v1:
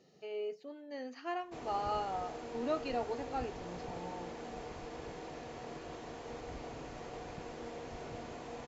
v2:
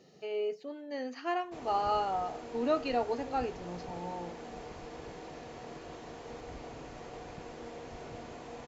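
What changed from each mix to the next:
speech +5.5 dB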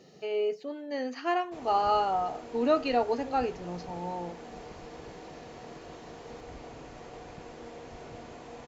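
speech +4.5 dB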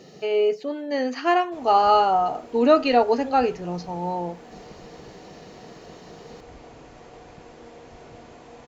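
speech +8.5 dB

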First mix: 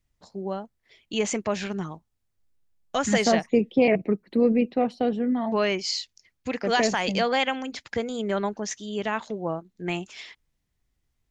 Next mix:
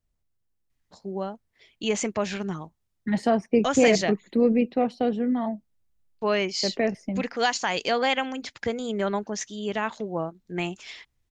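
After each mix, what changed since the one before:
first voice: entry +0.70 s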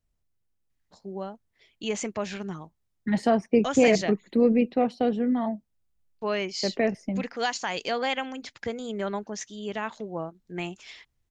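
first voice -4.0 dB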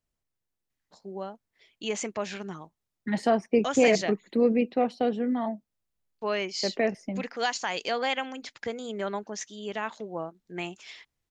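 master: add bass shelf 150 Hz -11 dB

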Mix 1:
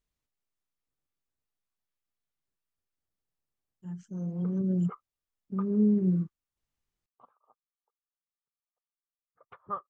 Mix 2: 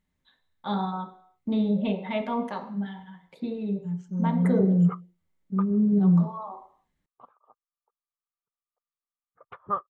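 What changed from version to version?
first voice: unmuted; background +7.0 dB; reverb: on, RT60 0.55 s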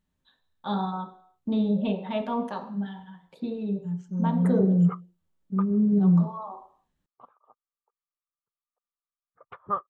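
first voice: add peaking EQ 2.1 kHz -13 dB 0.21 oct

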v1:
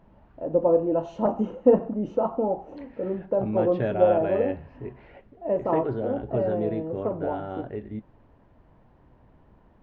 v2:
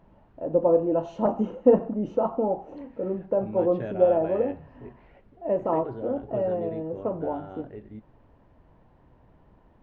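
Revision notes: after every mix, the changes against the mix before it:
second voice -7.5 dB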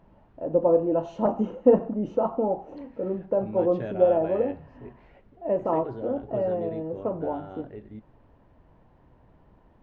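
second voice: remove low-pass 3.7 kHz

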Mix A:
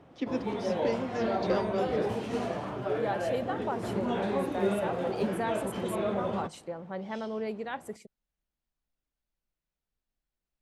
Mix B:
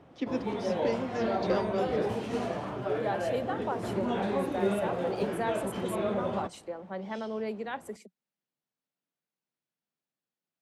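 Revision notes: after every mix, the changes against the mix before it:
second voice: add steep high-pass 180 Hz 96 dB/octave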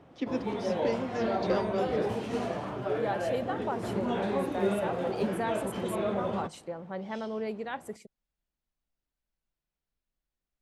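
second voice: remove steep high-pass 180 Hz 96 dB/octave

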